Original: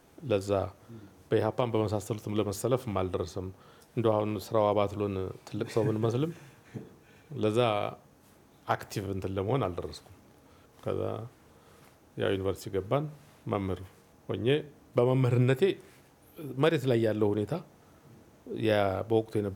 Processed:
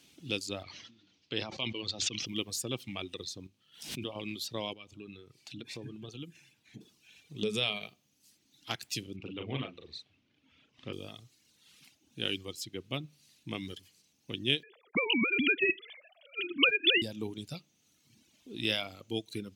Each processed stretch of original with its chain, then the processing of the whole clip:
0:00.63–0:02.26: low-pass filter 5,400 Hz 24 dB per octave + low-shelf EQ 390 Hz −5.5 dB + level that may fall only so fast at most 41 dB per second
0:03.47–0:04.16: tuned comb filter 51 Hz, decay 0.44 s + background raised ahead of every attack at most 100 dB per second
0:04.73–0:06.81: high-shelf EQ 2,900 Hz −6.5 dB + downward compressor 1.5 to 1, threshold −42 dBFS
0:07.42–0:07.88: parametric band 240 Hz −8 dB 1.2 octaves + hollow resonant body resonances 200/430 Hz, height 18 dB, ringing for 85 ms + downward compressor 4 to 1, threshold −18 dBFS
0:09.16–0:10.93: low-pass filter 2,900 Hz + double-tracking delay 38 ms −4.5 dB + highs frequency-modulated by the lows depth 0.14 ms
0:14.63–0:17.02: three sine waves on the formant tracks + every bin compressed towards the loudest bin 2 to 1
whole clip: meter weighting curve D; reverb reduction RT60 1.5 s; flat-topped bell 870 Hz −11 dB 2.6 octaves; level −1.5 dB

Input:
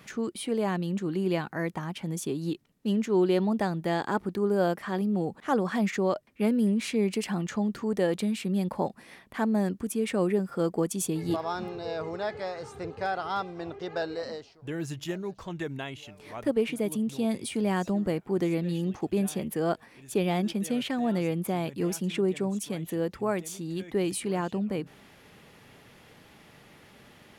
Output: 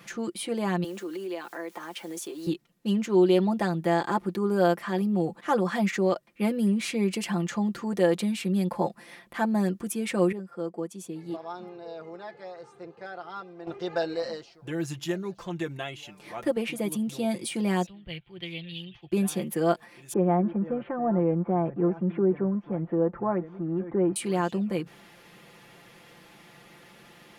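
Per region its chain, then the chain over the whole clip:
0:00.84–0:02.47: high-pass filter 300 Hz 24 dB per octave + bit-depth reduction 10 bits, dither triangular + downward compressor 4 to 1, threshold −35 dBFS
0:10.32–0:13.67: resonant band-pass 170 Hz, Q 0.53 + spectral tilt +4.5 dB per octave
0:17.86–0:19.12: drawn EQ curve 130 Hz 0 dB, 210 Hz −21 dB, 1,300 Hz −16 dB, 3,200 Hz +10 dB, 6,800 Hz −24 dB, 12,000 Hz −17 dB + multiband upward and downward expander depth 100%
0:20.13–0:24.16: mu-law and A-law mismatch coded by mu + low-pass filter 1,400 Hz 24 dB per octave
whole clip: low-shelf EQ 140 Hz −7.5 dB; comb filter 5.8 ms, depth 66%; level +1 dB

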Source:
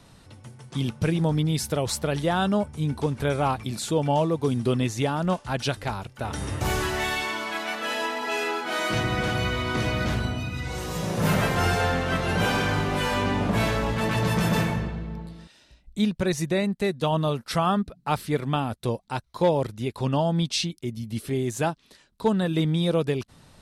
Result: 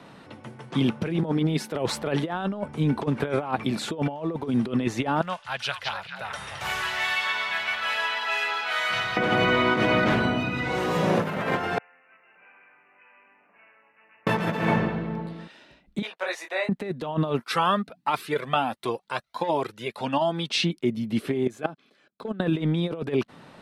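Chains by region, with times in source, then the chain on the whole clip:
0:01.23–0:01.72: elliptic high-pass filter 160 Hz + transient designer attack +9 dB, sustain −3 dB
0:05.21–0:09.17: guitar amp tone stack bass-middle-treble 10-0-10 + echo through a band-pass that steps 216 ms, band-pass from 3,900 Hz, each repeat −1.4 octaves, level −2 dB
0:11.78–0:14.27: bad sample-rate conversion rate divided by 8×, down none, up filtered + resonant band-pass 8,000 Hz, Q 11
0:16.02–0:16.69: high-pass filter 630 Hz 24 dB per octave + micro pitch shift up and down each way 34 cents
0:17.39–0:20.50: spectral tilt +2.5 dB per octave + flanger whose copies keep moving one way rising 1.4 Hz
0:21.47–0:22.40: output level in coarse steps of 22 dB + notch comb filter 930 Hz
whole clip: three-way crossover with the lows and the highs turned down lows −23 dB, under 160 Hz, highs −16 dB, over 3,200 Hz; compressor whose output falls as the input rises −29 dBFS, ratio −0.5; level +6 dB

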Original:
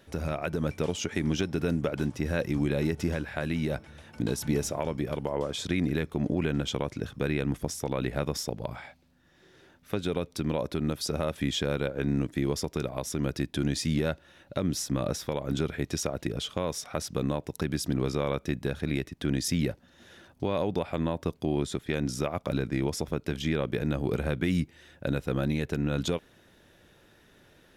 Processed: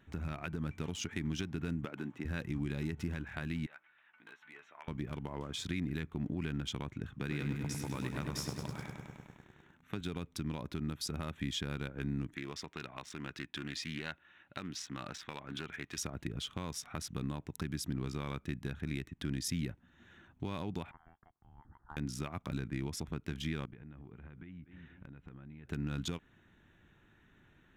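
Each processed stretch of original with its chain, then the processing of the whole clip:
0:01.85–0:02.25: high-pass filter 240 Hz + high-shelf EQ 6,200 Hz −10.5 dB
0:03.66–0:04.88: high-pass filter 1,400 Hz + high-frequency loss of the air 360 metres + double-tracking delay 12 ms −9 dB
0:07.15–0:10.01: high-pass filter 87 Hz + feedback echo at a low word length 101 ms, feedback 80%, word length 9 bits, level −6 dB
0:12.35–0:15.98: low-pass filter 2,700 Hz + spectral tilt +4 dB per octave + highs frequency-modulated by the lows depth 0.13 ms
0:20.91–0:21.97: inverse Chebyshev high-pass filter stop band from 900 Hz, stop band 50 dB + voice inversion scrambler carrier 3,300 Hz
0:23.65–0:25.69: low-pass filter 3,300 Hz + repeating echo 238 ms, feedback 50%, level −24 dB + downward compressor 8 to 1, threshold −42 dBFS
whole clip: adaptive Wiener filter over 9 samples; parametric band 540 Hz −14 dB 0.95 octaves; downward compressor 1.5 to 1, threshold −37 dBFS; level −2.5 dB

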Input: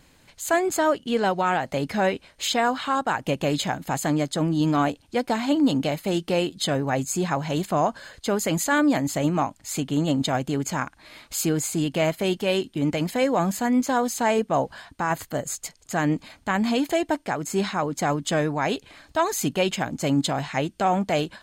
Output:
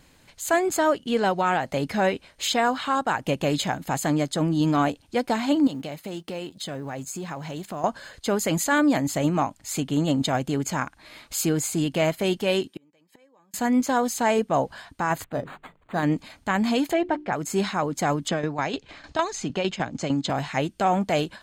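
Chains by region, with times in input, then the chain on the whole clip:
0:05.67–0:07.84: mu-law and A-law mismatch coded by A + high-pass filter 50 Hz + downward compressor 3 to 1, threshold −32 dBFS
0:12.67–0:13.54: high-pass filter 350 Hz 6 dB per octave + gate with flip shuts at −24 dBFS, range −34 dB + notch comb filter 700 Hz
0:15.24–0:16.03: high-frequency loss of the air 110 metres + mains-hum notches 50/100/150/200/250/300/350/400/450 Hz + linearly interpolated sample-rate reduction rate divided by 8×
0:16.93–0:17.33: low-pass filter 2,700 Hz + mains-hum notches 60/120/180/240/300/360 Hz + comb filter 5.6 ms, depth 30%
0:18.28–0:20.30: low-pass filter 6,800 Hz 24 dB per octave + shaped tremolo saw down 6.6 Hz, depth 70% + multiband upward and downward compressor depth 70%
whole clip: no processing

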